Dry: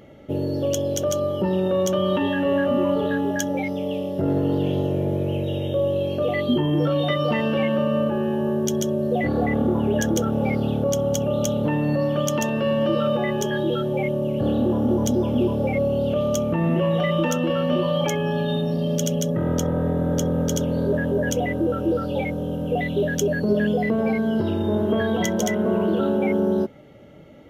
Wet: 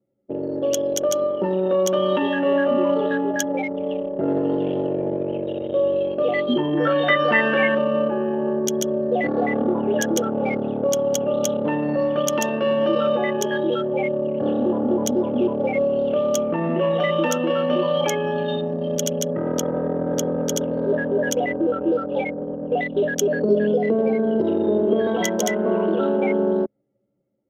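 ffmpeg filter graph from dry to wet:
-filter_complex "[0:a]asettb=1/sr,asplit=3[s0][s1][s2];[s0]atrim=end=6.774[s3];[s1]atrim=start=6.77:end=7.75,asetpts=PTS-STARTPTS,afade=t=in:d=0.004:c=qsin,afade=t=out:st=0.976:d=0.004:c=qsin,lowpass=f=3500:p=1,equalizer=f=1700:w=2:g=15[s4];[s2]atrim=start=7.746[s5];[s3][s4]acrossfade=d=0.004:c1=hsin:c2=qsin[s6];[s6][s5]acrossfade=d=0.004:c1=qsin:c2=hsin,asettb=1/sr,asplit=3[s7][s8][s9];[s7]atrim=end=23.334[s10];[s8]atrim=start=23.33:end=25.07,asetpts=PTS-STARTPTS,afade=t=in:d=0.004:c=qsin,afade=t=out:st=1.736:d=0.004:c=qsin,equalizer=f=490:w=1.1:g=10,acrossover=split=350|3000[s11][s12][s13];[s12]acompressor=threshold=0.0501:ratio=6:attack=3.2:release=140:knee=2.83:detection=peak[s14];[s11][s14][s13]amix=inputs=3:normalize=0[s15];[s9]atrim=start=25.066[s16];[s10][s15]acrossfade=d=0.004:c1=hsin:c2=qsin[s17];[s17][s16]acrossfade=d=0.004:c1=qsin:c2=hsin,highpass=270,anlmdn=100,dynaudnorm=f=190:g=5:m=1.41"

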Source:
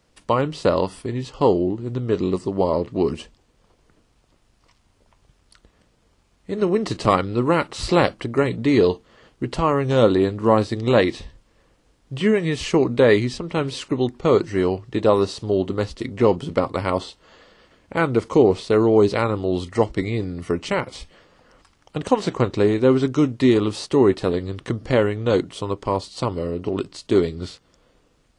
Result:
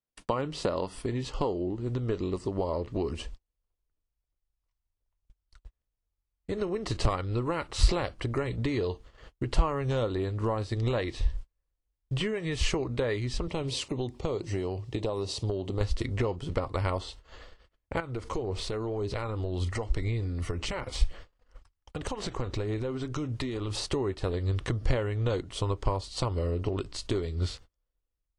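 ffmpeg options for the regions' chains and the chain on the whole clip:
-filter_complex "[0:a]asettb=1/sr,asplit=3[s0][s1][s2];[s0]atrim=end=13.474[s3];[s1]atrim=start=13.47:end=15.81,asetpts=PTS-STARTPTS,afade=t=in:d=0.004:c=qsin,afade=t=out:st=2.336:d=0.004:c=qsin,highpass=98,equalizer=f=1500:t=o:w=0.71:g=-12,acompressor=threshold=0.0562:ratio=2:attack=3.2:release=140:knee=1:detection=peak[s4];[s2]atrim=start=15.806[s5];[s3][s4]acrossfade=d=0.004:c1=hsin:c2=qsin[s6];[s6][s5]acrossfade=d=0.004:c1=qsin:c2=hsin,asettb=1/sr,asplit=3[s7][s8][s9];[s7]atrim=end=18.004[s10];[s8]atrim=start=18:end=23.85,asetpts=PTS-STARTPTS,afade=t=in:d=0.004:c=qsin,afade=t=out:st=5.846:d=0.004:c=qsin,acompressor=threshold=0.0316:ratio=4:attack=3.2:release=140:knee=1:detection=peak,aphaser=in_gain=1:out_gain=1:delay=4.2:decay=0.24:speed=1.9:type=sinusoidal[s11];[s9]atrim=start=23.846[s12];[s10][s11]acrossfade=d=0.004:c1=hsin:c2=qsin[s13];[s13][s12]acrossfade=d=0.004:c1=qsin:c2=hsin,acompressor=threshold=0.0501:ratio=6,agate=range=0.02:threshold=0.00316:ratio=16:detection=peak,asubboost=boost=9.5:cutoff=62"

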